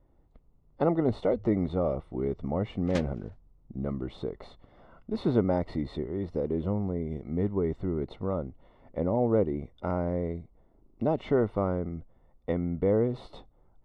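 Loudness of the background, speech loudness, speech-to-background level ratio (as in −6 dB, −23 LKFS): −45.0 LKFS, −30.0 LKFS, 15.0 dB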